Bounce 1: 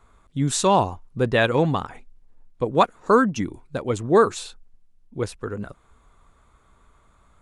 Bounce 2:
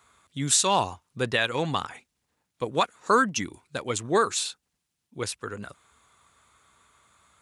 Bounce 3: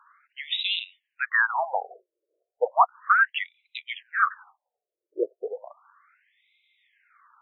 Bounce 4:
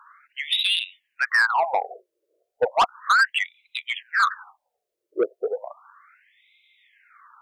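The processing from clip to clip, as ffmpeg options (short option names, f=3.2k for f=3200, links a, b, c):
-af "highpass=f=71:w=0.5412,highpass=f=71:w=1.3066,tiltshelf=f=1.3k:g=-8,alimiter=limit=-10dB:level=0:latency=1:release=274"
-filter_complex "[0:a]acrossover=split=3700[a][b];[a]adynamicsmooth=sensitivity=2:basefreq=2.9k[c];[c][b]amix=inputs=2:normalize=0,afftfilt=real='re*between(b*sr/1024,450*pow(2900/450,0.5+0.5*sin(2*PI*0.34*pts/sr))/1.41,450*pow(2900/450,0.5+0.5*sin(2*PI*0.34*pts/sr))*1.41)':imag='im*between(b*sr/1024,450*pow(2900/450,0.5+0.5*sin(2*PI*0.34*pts/sr))/1.41,450*pow(2900/450,0.5+0.5*sin(2*PI*0.34*pts/sr))*1.41)':win_size=1024:overlap=0.75,volume=8dB"
-af "asoftclip=type=tanh:threshold=-20.5dB,volume=7dB"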